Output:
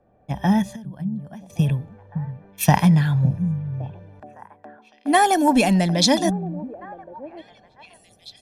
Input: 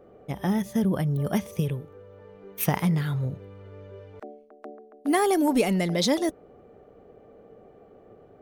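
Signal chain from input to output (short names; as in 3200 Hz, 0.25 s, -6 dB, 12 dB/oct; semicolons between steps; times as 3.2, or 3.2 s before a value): LPF 9500 Hz 12 dB/oct; comb 1.2 ms, depth 66%; 0.67–1.5 compressor 12:1, threshold -37 dBFS, peak gain reduction 18.5 dB; delay with a stepping band-pass 0.56 s, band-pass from 170 Hz, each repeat 1.4 oct, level -6 dB; three-band expander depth 40%; gain +4.5 dB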